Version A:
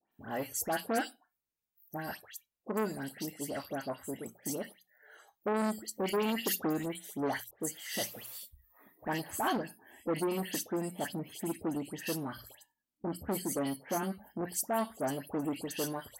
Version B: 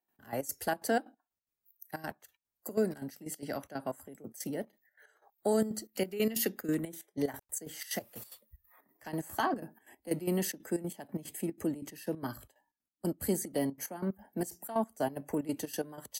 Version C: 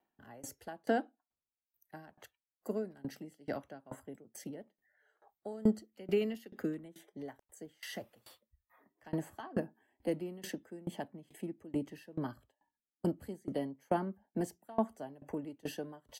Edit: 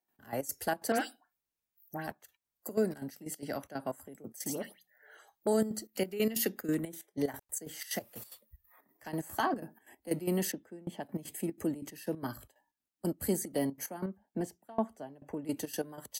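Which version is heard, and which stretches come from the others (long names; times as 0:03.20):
B
0:00.92–0:02.07: punch in from A
0:04.46–0:05.47: punch in from A
0:10.52–0:11.03: punch in from C
0:14.06–0:15.45: punch in from C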